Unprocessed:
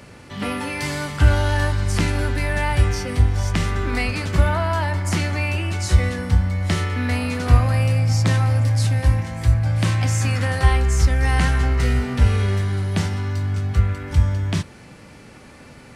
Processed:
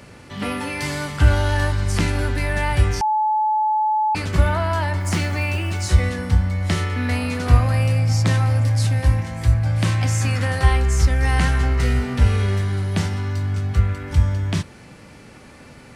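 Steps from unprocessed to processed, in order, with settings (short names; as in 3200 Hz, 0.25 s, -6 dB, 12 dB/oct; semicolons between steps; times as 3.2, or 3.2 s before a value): 3.01–4.15 bleep 861 Hz -16 dBFS; 5–5.9 short-mantissa float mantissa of 4-bit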